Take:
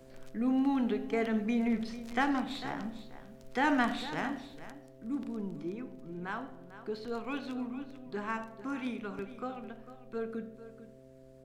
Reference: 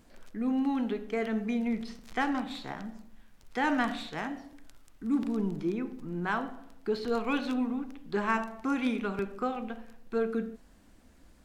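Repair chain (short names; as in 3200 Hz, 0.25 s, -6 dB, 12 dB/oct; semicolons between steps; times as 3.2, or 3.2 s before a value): de-hum 131.6 Hz, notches 5; inverse comb 0.449 s -14 dB; gain 0 dB, from 4.71 s +7.5 dB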